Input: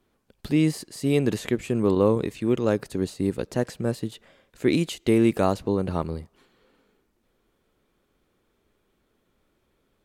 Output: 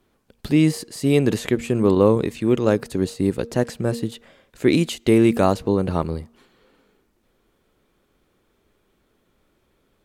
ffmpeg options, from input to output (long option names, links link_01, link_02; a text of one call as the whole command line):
ffmpeg -i in.wav -af "bandreject=frequency=233.7:width_type=h:width=4,bandreject=frequency=467.4:width_type=h:width=4,volume=4.5dB" out.wav